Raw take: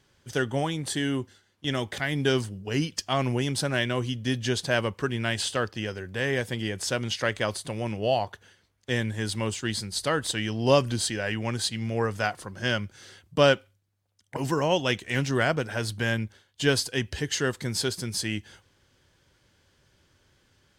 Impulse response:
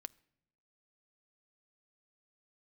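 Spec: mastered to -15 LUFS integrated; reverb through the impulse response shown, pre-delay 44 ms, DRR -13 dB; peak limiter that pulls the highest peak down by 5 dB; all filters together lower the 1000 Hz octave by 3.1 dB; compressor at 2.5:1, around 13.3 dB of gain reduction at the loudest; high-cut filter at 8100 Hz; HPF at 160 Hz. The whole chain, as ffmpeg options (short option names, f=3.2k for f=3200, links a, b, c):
-filter_complex "[0:a]highpass=160,lowpass=8.1k,equalizer=f=1k:t=o:g=-4.5,acompressor=threshold=-36dB:ratio=2.5,alimiter=level_in=0.5dB:limit=-24dB:level=0:latency=1,volume=-0.5dB,asplit=2[a][b];[1:a]atrim=start_sample=2205,adelay=44[c];[b][c]afir=irnorm=-1:irlink=0,volume=18dB[d];[a][d]amix=inputs=2:normalize=0,volume=9.5dB"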